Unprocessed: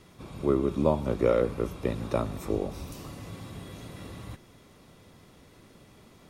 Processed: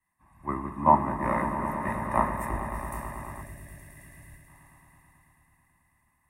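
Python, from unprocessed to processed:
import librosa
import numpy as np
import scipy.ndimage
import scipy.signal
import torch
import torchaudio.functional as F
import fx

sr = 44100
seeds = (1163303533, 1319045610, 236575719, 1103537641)

y = fx.band_shelf(x, sr, hz=4600.0, db=-16.0, octaves=1.7)
y = y + 0.99 * np.pad(y, (int(1.1 * sr / 1000.0), 0))[:len(y)]
y = fx.echo_swell(y, sr, ms=109, loudest=5, wet_db=-9)
y = fx.spec_box(y, sr, start_s=3.42, length_s=1.05, low_hz=700.0, high_hz=1500.0, gain_db=-10)
y = fx.graphic_eq(y, sr, hz=(125, 500, 1000, 2000, 4000, 8000), db=(-5, -4, 10, 10, -5, 12))
y = fx.band_widen(y, sr, depth_pct=100)
y = y * librosa.db_to_amplitude(-7.5)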